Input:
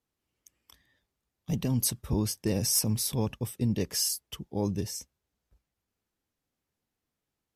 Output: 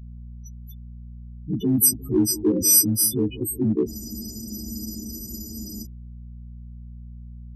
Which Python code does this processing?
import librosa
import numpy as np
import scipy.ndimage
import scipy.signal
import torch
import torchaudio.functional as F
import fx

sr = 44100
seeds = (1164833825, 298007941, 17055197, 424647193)

p1 = fx.freq_snap(x, sr, grid_st=3)
p2 = scipy.signal.sosfilt(scipy.signal.butter(2, 53.0, 'highpass', fs=sr, output='sos'), p1)
p3 = fx.peak_eq(p2, sr, hz=330.0, db=14.5, octaves=0.82)
p4 = fx.add_hum(p3, sr, base_hz=60, snr_db=16)
p5 = fx.spec_topn(p4, sr, count=8)
p6 = np.clip(10.0 ** (21.0 / 20.0) * p5, -1.0, 1.0) / 10.0 ** (21.0 / 20.0)
p7 = p5 + (p6 * librosa.db_to_amplitude(-9.5))
p8 = fx.echo_bbd(p7, sr, ms=180, stages=1024, feedback_pct=49, wet_db=-16)
y = fx.spec_freeze(p8, sr, seeds[0], at_s=3.91, hold_s=1.92)